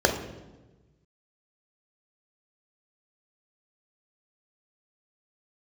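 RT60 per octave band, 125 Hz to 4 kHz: 1.7 s, 1.4 s, 1.3 s, 1.1 s, 0.90 s, 0.85 s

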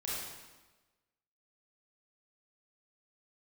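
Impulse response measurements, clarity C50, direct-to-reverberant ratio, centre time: -3.0 dB, -7.5 dB, 96 ms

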